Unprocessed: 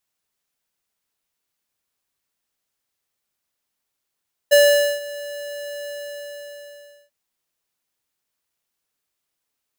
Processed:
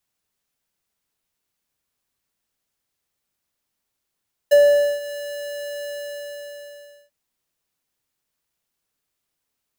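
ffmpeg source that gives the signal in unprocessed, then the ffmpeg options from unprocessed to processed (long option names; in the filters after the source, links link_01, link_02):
-f lavfi -i "aevalsrc='0.282*(2*lt(mod(579*t,1),0.5)-1)':duration=2.59:sample_rate=44100,afade=type=in:duration=0.019,afade=type=out:start_time=0.019:duration=0.468:silence=0.0944,afade=type=out:start_time=1.37:duration=1.22"
-filter_complex "[0:a]lowshelf=frequency=300:gain=5.5,acrossover=split=270|1300[link_01][link_02][link_03];[link_03]acompressor=threshold=-30dB:ratio=6[link_04];[link_01][link_02][link_04]amix=inputs=3:normalize=0"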